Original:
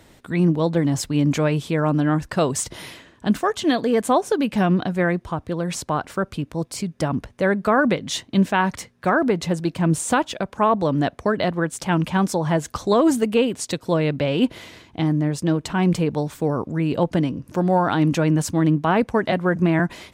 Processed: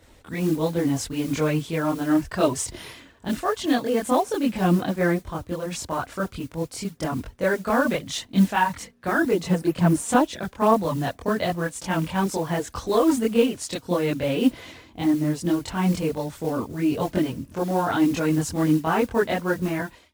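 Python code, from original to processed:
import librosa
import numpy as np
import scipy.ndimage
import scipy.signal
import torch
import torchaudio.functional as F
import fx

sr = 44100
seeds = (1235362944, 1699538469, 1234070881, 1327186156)

y = fx.fade_out_tail(x, sr, length_s=0.55)
y = fx.mod_noise(y, sr, seeds[0], snr_db=23)
y = fx.chorus_voices(y, sr, voices=6, hz=0.85, base_ms=24, depth_ms=2.3, mix_pct=60)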